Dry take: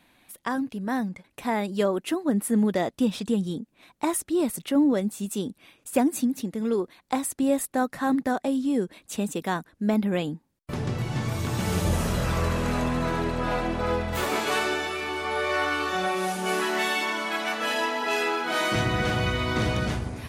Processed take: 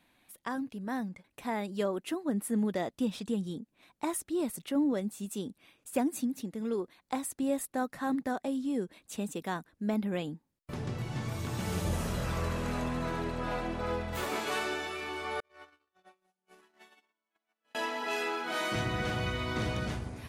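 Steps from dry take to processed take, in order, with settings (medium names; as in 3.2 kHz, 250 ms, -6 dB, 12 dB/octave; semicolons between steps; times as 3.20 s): 15.40–17.75 s: gate -21 dBFS, range -52 dB; trim -7.5 dB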